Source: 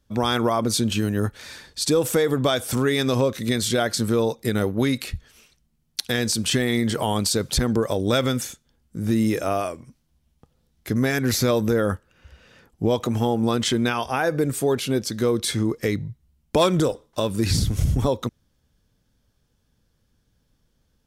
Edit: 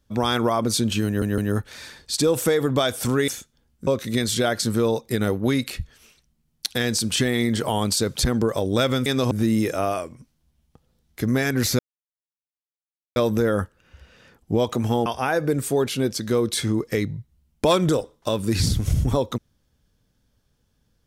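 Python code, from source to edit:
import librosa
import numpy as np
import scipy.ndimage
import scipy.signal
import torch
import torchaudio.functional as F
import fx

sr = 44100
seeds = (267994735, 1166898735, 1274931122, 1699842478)

y = fx.edit(x, sr, fx.stutter(start_s=1.06, slice_s=0.16, count=3),
    fx.swap(start_s=2.96, length_s=0.25, other_s=8.4, other_length_s=0.59),
    fx.insert_silence(at_s=11.47, length_s=1.37),
    fx.cut(start_s=13.37, length_s=0.6), tone=tone)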